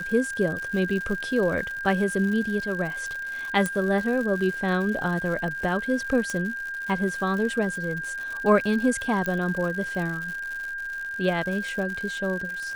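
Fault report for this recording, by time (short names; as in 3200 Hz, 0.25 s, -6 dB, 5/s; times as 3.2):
crackle 160/s -32 dBFS
tone 1600 Hz -30 dBFS
3.66 pop -13 dBFS
6.3 pop -16 dBFS
9.26 pop -14 dBFS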